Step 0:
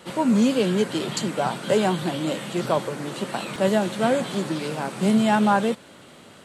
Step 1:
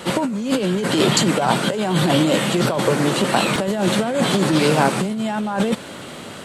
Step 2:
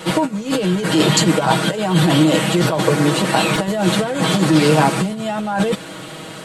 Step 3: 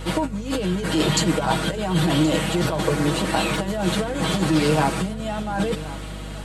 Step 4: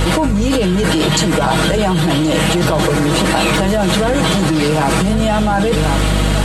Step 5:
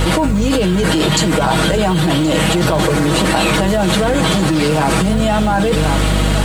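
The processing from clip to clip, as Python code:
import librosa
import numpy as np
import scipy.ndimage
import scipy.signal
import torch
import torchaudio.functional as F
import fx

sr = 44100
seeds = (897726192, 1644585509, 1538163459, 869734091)

y1 = fx.over_compress(x, sr, threshold_db=-27.0, ratio=-1.0)
y1 = y1 * 10.0 ** (8.5 / 20.0)
y2 = y1 + 0.79 * np.pad(y1, (int(6.3 * sr / 1000.0), 0))[:len(y1)]
y3 = fx.add_hum(y2, sr, base_hz=50, snr_db=11)
y3 = y3 + 10.0 ** (-16.5 / 20.0) * np.pad(y3, (int(1074 * sr / 1000.0), 0))[:len(y3)]
y3 = y3 * 10.0 ** (-6.0 / 20.0)
y4 = fx.env_flatten(y3, sr, amount_pct=100)
y4 = y4 * 10.0 ** (2.0 / 20.0)
y5 = fx.dmg_noise_colour(y4, sr, seeds[0], colour='violet', level_db=-52.0)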